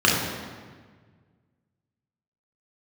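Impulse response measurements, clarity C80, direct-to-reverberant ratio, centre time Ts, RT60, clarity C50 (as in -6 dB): 3.5 dB, -4.0 dB, 76 ms, 1.6 s, 1.5 dB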